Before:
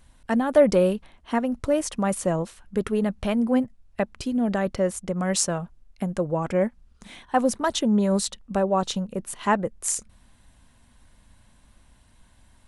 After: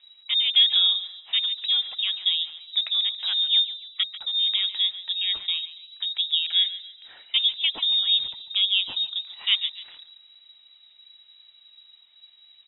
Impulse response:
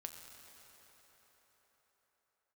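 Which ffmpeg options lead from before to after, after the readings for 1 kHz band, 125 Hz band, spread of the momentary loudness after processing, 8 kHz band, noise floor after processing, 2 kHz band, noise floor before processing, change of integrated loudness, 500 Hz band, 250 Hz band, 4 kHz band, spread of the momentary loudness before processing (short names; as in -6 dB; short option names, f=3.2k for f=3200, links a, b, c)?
under -20 dB, under -35 dB, 9 LU, under -40 dB, -56 dBFS, -1.0 dB, -58 dBFS, +3.0 dB, under -35 dB, under -35 dB, +20.0 dB, 9 LU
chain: -filter_complex "[0:a]highshelf=f=2.5k:g=-11.5,bandreject=f=50:t=h:w=6,bandreject=f=100:t=h:w=6,bandreject=f=150:t=h:w=6,bandreject=f=200:t=h:w=6,aphaser=in_gain=1:out_gain=1:delay=3.7:decay=0.25:speed=1.1:type=triangular,asplit=2[a][b];[b]asplit=3[c][d][e];[c]adelay=140,afreqshift=35,volume=-15dB[f];[d]adelay=280,afreqshift=70,volume=-24.1dB[g];[e]adelay=420,afreqshift=105,volume=-33.2dB[h];[f][g][h]amix=inputs=3:normalize=0[i];[a][i]amix=inputs=2:normalize=0,lowpass=f=3.3k:t=q:w=0.5098,lowpass=f=3.3k:t=q:w=0.6013,lowpass=f=3.3k:t=q:w=0.9,lowpass=f=3.3k:t=q:w=2.563,afreqshift=-3900"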